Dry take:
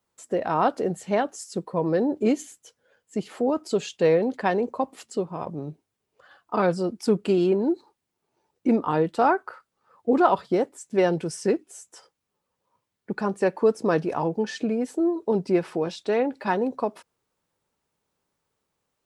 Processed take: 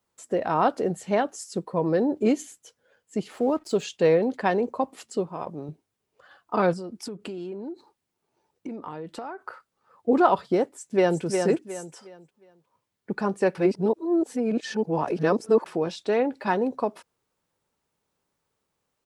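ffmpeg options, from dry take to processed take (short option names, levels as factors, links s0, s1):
-filter_complex "[0:a]asettb=1/sr,asplit=3[s0][s1][s2];[s0]atrim=end=3.314[s3];[s1]atrim=start=3.31:end=3.84,asetpts=PTS-STARTPTS,afade=t=in:d=0.004:c=qsin,afade=t=out:st=0.526:d=0.004:c=qsin,aeval=exprs='sgn(val(0))*max(abs(val(0))-0.002,0)':c=same[s4];[s2]atrim=start=3.836[s5];[s3][s4]acrossfade=d=0.004:c1=hsin:c2=qsin[s6];[s6][s5]acrossfade=d=0.004:c1=qsin:c2=hsin,asettb=1/sr,asplit=3[s7][s8][s9];[s7]atrim=end=5.294[s10];[s8]atrim=start=5.29:end=5.69,asetpts=PTS-STARTPTS,afade=t=in:d=0.004:c=qsin,afade=t=out:st=0.396:d=0.004:c=qsin,lowshelf=f=210:g=-8[s11];[s9]atrim=start=5.686[s12];[s10][s11]acrossfade=d=0.004:c1=hsin:c2=qsin[s13];[s13][s12]acrossfade=d=0.004:c1=qsin:c2=hsin,asettb=1/sr,asplit=3[s14][s15][s16];[s14]atrim=end=6.734[s17];[s15]atrim=start=6.73:end=9.46,asetpts=PTS-STARTPTS,afade=t=in:d=0.004:c=qsin,afade=t=out:st=2.726:d=0.004:c=qsin,acompressor=threshold=0.0251:ratio=8:attack=3.2:release=140:knee=1:detection=peak[s18];[s16]atrim=start=9.456[s19];[s17][s18]acrossfade=d=0.004:c1=hsin:c2=qsin[s20];[s20][s19]acrossfade=d=0.004:c1=qsin:c2=hsin,asplit=2[s21][s22];[s22]afade=t=in:st=10.71:d=0.01,afade=t=out:st=11.22:d=0.01,aecho=0:1:360|720|1080|1440:0.562341|0.168702|0.0506107|0.0151832[s23];[s21][s23]amix=inputs=2:normalize=0,asplit=3[s24][s25][s26];[s24]atrim=end=13.552[s27];[s25]atrim=start=13.548:end=15.662,asetpts=PTS-STARTPTS,areverse[s28];[s26]atrim=start=15.658[s29];[s27][s28]acrossfade=d=0.004:c1=hsin:c2=hsin[s30];[s30][s29]acrossfade=d=0.004:c1=hsin:c2=hsin"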